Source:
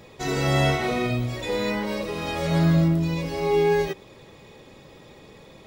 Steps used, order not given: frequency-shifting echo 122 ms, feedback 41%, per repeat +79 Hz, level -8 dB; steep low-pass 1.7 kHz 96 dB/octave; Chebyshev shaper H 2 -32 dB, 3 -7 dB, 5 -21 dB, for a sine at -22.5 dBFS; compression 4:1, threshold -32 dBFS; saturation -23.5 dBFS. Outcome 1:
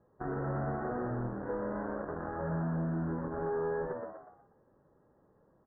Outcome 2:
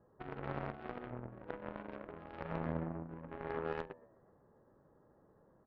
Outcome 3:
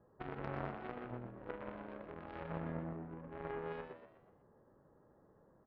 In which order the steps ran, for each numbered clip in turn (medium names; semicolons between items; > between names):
Chebyshev shaper > saturation > frequency-shifting echo > compression > steep low-pass; compression > steep low-pass > frequency-shifting echo > Chebyshev shaper > saturation; steep low-pass > compression > Chebyshev shaper > saturation > frequency-shifting echo